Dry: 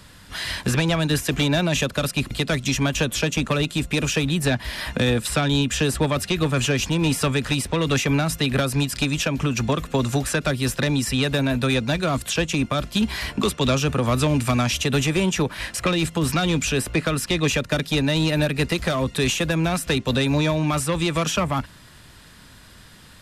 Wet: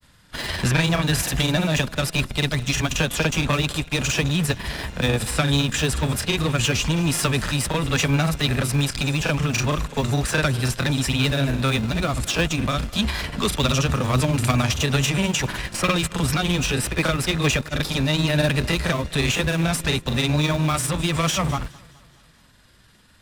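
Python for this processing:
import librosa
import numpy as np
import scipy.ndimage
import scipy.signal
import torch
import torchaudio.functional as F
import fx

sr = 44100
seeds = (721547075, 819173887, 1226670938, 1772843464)

p1 = fx.dynamic_eq(x, sr, hz=340.0, q=0.72, threshold_db=-36.0, ratio=4.0, max_db=-6)
p2 = fx.transient(p1, sr, attack_db=0, sustain_db=7)
p3 = fx.schmitt(p2, sr, flips_db=-25.5)
p4 = p2 + (p3 * 10.0 ** (-7.0 / 20.0))
p5 = fx.granulator(p4, sr, seeds[0], grain_ms=100.0, per_s=20.0, spray_ms=38.0, spread_st=0)
p6 = p5 + fx.echo_feedback(p5, sr, ms=210, feedback_pct=57, wet_db=-18.0, dry=0)
p7 = fx.upward_expand(p6, sr, threshold_db=-38.0, expansion=1.5)
y = p7 * 10.0 ** (2.5 / 20.0)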